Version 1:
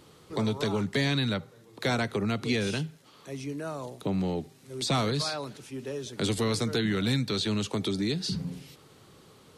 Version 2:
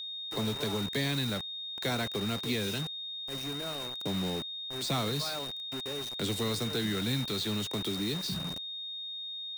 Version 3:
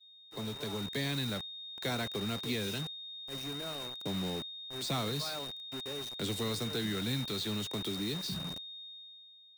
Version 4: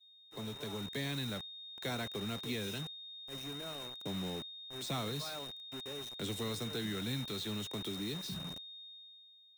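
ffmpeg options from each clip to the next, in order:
-af "acrusher=bits=5:mix=0:aa=0.000001,aeval=exprs='val(0)+0.0251*sin(2*PI*3700*n/s)':c=same,volume=0.562"
-af "dynaudnorm=f=140:g=11:m=1.68,agate=range=0.0224:threshold=0.0224:ratio=3:detection=peak,volume=0.422"
-af "bandreject=f=4600:w=7.5,volume=0.668"

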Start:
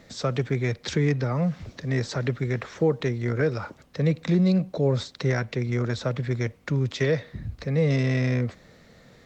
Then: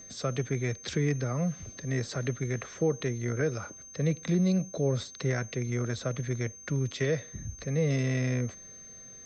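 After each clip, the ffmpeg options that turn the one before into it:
-af "bandreject=f=900:w=6,aeval=exprs='val(0)+0.00891*sin(2*PI*6300*n/s)':c=same,volume=0.562"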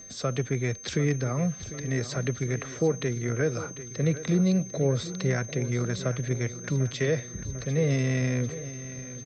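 -af "aecho=1:1:747|1494|2241|2988|3735|4482:0.2|0.114|0.0648|0.037|0.0211|0.012,volume=1.33"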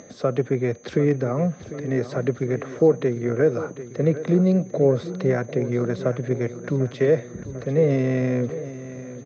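-af "bandpass=f=460:t=q:w=0.7:csg=0,acompressor=mode=upward:threshold=0.00355:ratio=2.5,volume=2.82"

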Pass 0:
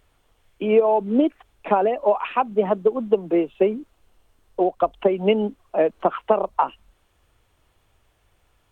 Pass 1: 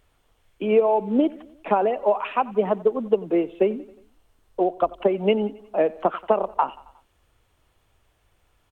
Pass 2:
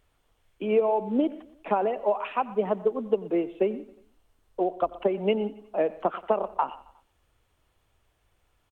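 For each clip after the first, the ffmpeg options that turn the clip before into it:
-af "aecho=1:1:90|180|270|360:0.0891|0.0499|0.0279|0.0157,volume=0.841"
-filter_complex "[0:a]asplit=2[s0][s1];[s1]adelay=122.4,volume=0.112,highshelf=f=4000:g=-2.76[s2];[s0][s2]amix=inputs=2:normalize=0,volume=0.596"

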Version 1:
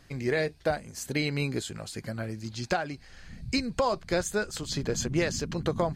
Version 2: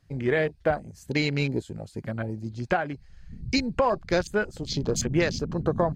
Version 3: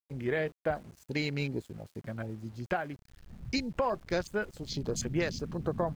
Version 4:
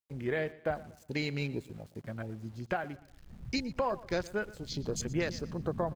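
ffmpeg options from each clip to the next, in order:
-af "afwtdn=0.01,volume=1.5"
-af "aeval=exprs='val(0)*gte(abs(val(0)),0.00501)':c=same,volume=0.447"
-af "aecho=1:1:118|236|354:0.112|0.0415|0.0154,volume=0.841"

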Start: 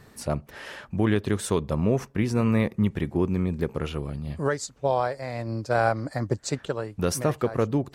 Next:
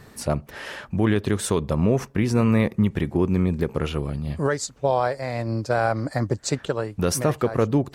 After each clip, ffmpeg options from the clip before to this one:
-af "alimiter=limit=0.178:level=0:latency=1:release=86,volume=1.68"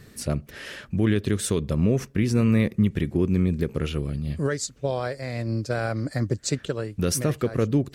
-af "equalizer=f=880:w=1.3:g=-12.5"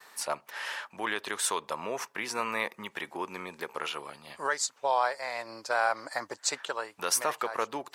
-af "highpass=f=910:t=q:w=4.8,agate=range=0.0224:threshold=0.00158:ratio=3:detection=peak"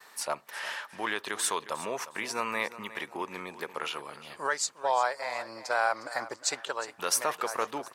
-af "aecho=1:1:358|716|1074:0.178|0.048|0.013"

